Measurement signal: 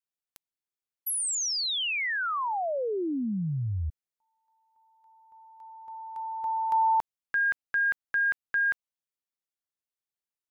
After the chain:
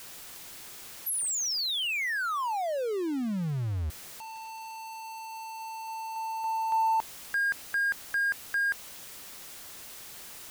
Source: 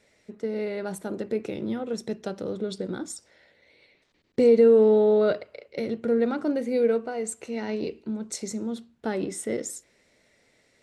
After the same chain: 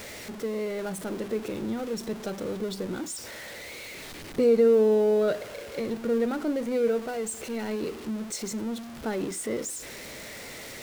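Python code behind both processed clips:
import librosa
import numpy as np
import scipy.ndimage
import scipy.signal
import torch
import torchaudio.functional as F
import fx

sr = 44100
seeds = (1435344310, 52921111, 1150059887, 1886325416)

y = x + 0.5 * 10.0 ** (-32.0 / 20.0) * np.sign(x)
y = F.gain(torch.from_numpy(y), -3.5).numpy()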